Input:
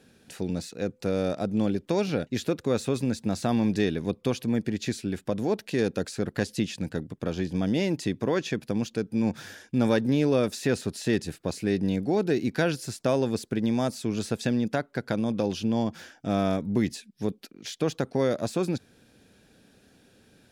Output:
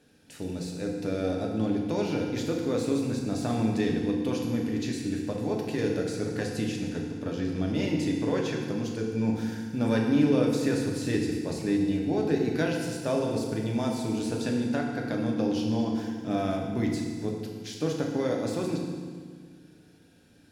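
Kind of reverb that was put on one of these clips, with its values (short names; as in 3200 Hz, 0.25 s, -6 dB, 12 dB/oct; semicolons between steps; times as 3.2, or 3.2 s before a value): FDN reverb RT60 1.7 s, low-frequency decay 1.4×, high-frequency decay 0.9×, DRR -1 dB; gain -5.5 dB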